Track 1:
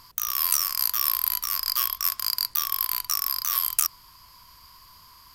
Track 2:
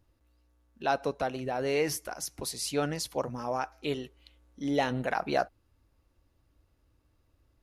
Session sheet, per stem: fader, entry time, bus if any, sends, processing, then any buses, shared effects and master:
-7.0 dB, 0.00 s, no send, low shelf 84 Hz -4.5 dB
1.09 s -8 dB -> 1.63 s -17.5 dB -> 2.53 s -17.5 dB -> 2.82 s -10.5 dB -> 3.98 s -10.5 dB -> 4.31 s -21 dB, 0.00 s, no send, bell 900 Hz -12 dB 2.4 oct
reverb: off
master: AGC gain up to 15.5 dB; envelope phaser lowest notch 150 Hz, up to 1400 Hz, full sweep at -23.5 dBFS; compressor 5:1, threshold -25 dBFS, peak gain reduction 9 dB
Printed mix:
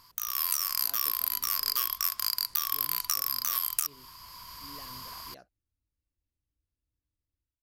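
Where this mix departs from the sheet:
stem 2 -8.0 dB -> -20.0 dB; master: missing envelope phaser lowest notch 150 Hz, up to 1400 Hz, full sweep at -23.5 dBFS

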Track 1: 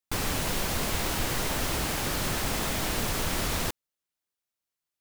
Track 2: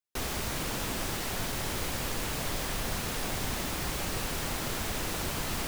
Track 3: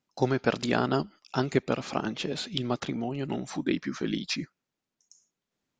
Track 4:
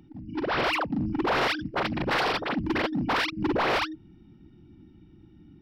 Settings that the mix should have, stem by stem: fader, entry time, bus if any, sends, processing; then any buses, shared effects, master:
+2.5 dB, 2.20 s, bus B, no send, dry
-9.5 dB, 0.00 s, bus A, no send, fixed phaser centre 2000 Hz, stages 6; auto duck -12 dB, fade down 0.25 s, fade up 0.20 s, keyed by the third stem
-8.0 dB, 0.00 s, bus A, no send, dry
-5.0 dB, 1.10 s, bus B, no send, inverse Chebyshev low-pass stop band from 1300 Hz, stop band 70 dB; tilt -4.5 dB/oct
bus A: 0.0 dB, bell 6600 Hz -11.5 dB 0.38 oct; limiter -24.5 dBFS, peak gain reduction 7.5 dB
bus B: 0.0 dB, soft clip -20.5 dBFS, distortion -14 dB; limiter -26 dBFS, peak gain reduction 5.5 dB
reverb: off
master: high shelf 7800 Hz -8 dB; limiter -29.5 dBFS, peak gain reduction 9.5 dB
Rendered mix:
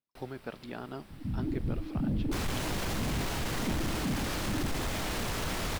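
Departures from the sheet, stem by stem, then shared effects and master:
stem 2: missing fixed phaser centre 2000 Hz, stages 6; stem 3 -8.0 dB -> -15.0 dB; master: missing limiter -29.5 dBFS, peak gain reduction 9.5 dB

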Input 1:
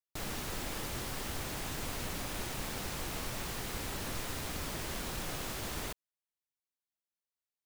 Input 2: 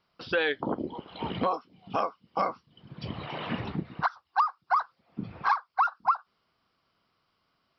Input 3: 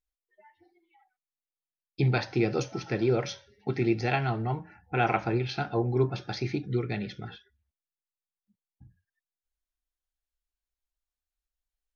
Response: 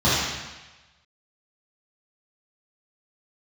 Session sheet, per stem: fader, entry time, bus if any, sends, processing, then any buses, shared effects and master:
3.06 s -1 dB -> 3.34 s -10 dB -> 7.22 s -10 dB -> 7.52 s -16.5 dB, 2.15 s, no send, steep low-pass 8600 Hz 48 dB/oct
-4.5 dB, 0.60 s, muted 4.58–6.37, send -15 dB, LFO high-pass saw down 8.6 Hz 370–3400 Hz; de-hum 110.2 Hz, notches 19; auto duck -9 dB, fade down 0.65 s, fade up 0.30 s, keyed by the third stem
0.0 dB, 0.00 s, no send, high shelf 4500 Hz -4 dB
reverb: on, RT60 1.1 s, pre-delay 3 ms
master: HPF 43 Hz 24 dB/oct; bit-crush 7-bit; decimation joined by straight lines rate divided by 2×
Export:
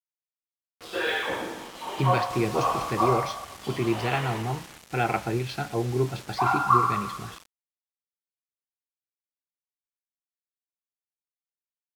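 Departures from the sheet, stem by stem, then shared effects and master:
stem 1: missing steep low-pass 8600 Hz 48 dB/oct; stem 3: missing high shelf 4500 Hz -4 dB

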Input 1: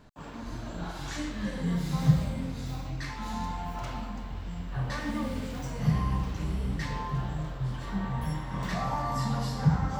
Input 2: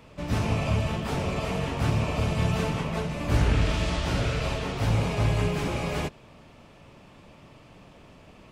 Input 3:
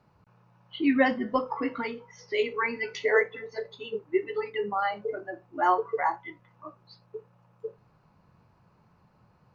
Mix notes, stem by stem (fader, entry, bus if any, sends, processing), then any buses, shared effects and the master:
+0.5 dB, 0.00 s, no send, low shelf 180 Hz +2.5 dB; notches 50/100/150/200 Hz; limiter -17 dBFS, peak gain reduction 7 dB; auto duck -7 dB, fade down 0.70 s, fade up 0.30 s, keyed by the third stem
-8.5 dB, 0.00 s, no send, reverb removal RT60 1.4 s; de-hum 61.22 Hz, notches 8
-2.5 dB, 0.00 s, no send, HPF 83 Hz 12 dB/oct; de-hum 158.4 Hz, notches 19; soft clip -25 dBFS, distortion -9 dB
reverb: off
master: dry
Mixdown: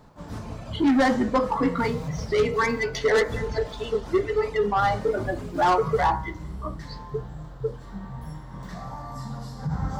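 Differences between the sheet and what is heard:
stem 1: missing notches 50/100/150/200 Hz; stem 3 -2.5 dB -> +9.5 dB; master: extra bell 2600 Hz -9.5 dB 0.61 oct

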